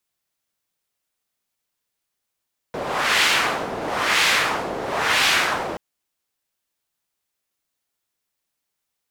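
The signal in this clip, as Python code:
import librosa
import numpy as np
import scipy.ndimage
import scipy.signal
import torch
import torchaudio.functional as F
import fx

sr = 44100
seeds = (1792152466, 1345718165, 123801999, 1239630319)

y = fx.wind(sr, seeds[0], length_s=3.03, low_hz=530.0, high_hz=2600.0, q=1.1, gusts=3, swing_db=11.0)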